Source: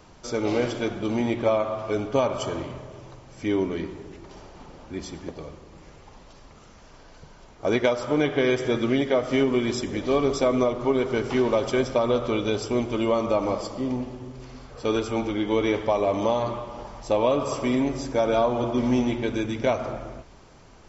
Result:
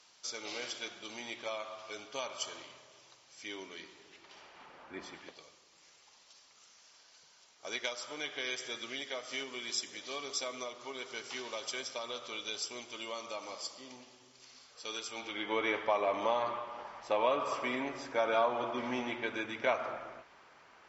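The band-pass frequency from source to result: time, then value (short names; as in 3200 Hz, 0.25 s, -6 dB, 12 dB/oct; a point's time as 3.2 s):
band-pass, Q 1
3.85 s 5000 Hz
5.05 s 1300 Hz
5.44 s 5600 Hz
15.09 s 5600 Hz
15.52 s 1700 Hz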